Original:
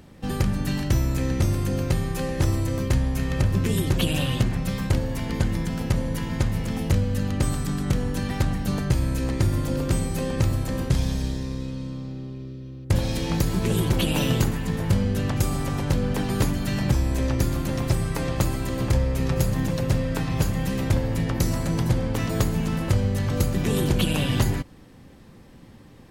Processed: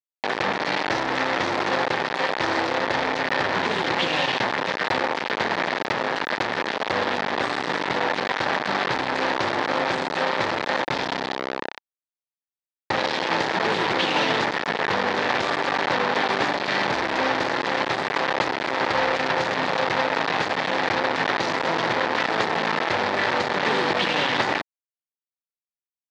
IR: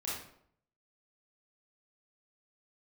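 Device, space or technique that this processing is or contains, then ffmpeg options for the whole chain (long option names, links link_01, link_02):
hand-held game console: -filter_complex "[0:a]asettb=1/sr,asplit=3[link_01][link_02][link_03];[link_01]atrim=end=6.614[link_04];[link_02]atrim=start=6.61:end=7.54,asetpts=PTS-STARTPTS,afade=type=in:duration=0.004:curve=qsin,afade=type=out:start_time=0.926:duration=0.004:curve=qsin,equalizer=frequency=150:width=2.5:gain=-3.5[link_05];[link_03]atrim=start=7.536[link_06];[link_04][link_05]acrossfade=duration=0.004:curve1=hsin:curve2=qsin[link_07];[link_07][link_06]acrossfade=duration=0.004:curve1=qsin:curve2=hsin,acrusher=bits=3:mix=0:aa=0.000001,highpass=430,equalizer=frequency=880:width_type=q:width=4:gain=5,equalizer=frequency=1800:width_type=q:width=4:gain=5,equalizer=frequency=2900:width_type=q:width=4:gain=-3,lowpass=frequency=4200:width=0.5412,lowpass=frequency=4200:width=1.3066,volume=4.5dB"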